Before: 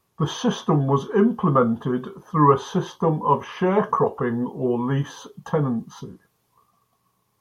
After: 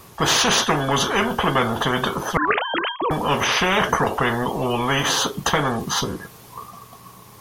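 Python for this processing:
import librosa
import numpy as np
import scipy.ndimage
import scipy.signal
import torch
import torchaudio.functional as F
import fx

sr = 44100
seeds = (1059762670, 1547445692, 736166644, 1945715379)

y = fx.sine_speech(x, sr, at=(2.37, 3.11))
y = fx.spectral_comp(y, sr, ratio=4.0)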